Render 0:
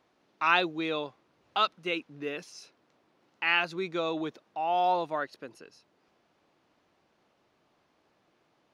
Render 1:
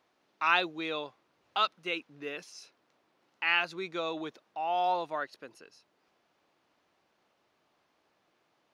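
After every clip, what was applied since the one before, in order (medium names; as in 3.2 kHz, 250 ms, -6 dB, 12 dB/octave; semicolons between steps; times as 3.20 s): bass shelf 420 Hz -7 dB; trim -1 dB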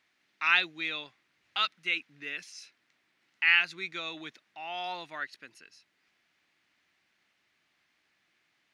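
graphic EQ 500/1000/2000/4000/8000 Hz -9/-6/+11/+3/+5 dB; trim -3 dB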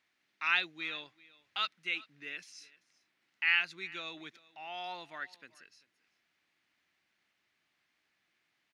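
delay 389 ms -22 dB; trim -5 dB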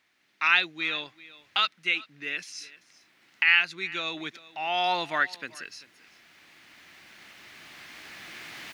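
recorder AGC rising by 6.4 dB/s; trim +7.5 dB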